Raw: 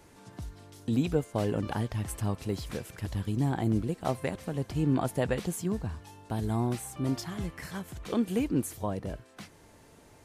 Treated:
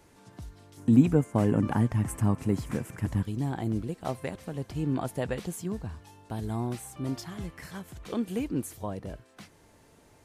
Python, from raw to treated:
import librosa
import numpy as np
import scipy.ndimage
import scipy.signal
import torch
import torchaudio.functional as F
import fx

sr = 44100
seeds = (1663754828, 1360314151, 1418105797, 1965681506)

y = fx.graphic_eq(x, sr, hz=(125, 250, 1000, 2000, 4000, 8000), db=(8, 10, 6, 5, -8, 5), at=(0.77, 3.23))
y = y * 10.0 ** (-2.5 / 20.0)